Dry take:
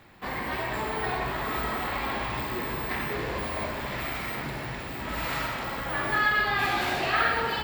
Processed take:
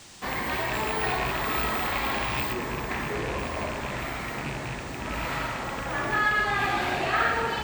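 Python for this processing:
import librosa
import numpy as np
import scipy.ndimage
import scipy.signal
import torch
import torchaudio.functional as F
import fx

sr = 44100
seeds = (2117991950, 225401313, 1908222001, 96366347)

y = fx.rattle_buzz(x, sr, strikes_db=-35.0, level_db=-23.0)
y = fx.high_shelf(y, sr, hz=3400.0, db=fx.steps((0.0, 4.0), (2.52, -8.5)))
y = fx.dmg_noise_band(y, sr, seeds[0], low_hz=2500.0, high_hz=8600.0, level_db=-52.0)
y = F.gain(torch.from_numpy(y), 1.5).numpy()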